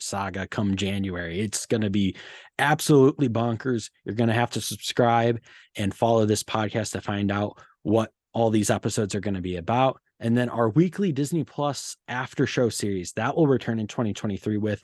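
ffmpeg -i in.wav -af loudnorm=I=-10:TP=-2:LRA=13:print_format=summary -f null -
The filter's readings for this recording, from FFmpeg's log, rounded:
Input Integrated:    -25.1 LUFS
Input True Peak:      -6.8 dBTP
Input LRA:             2.1 LU
Input Threshold:     -35.2 LUFS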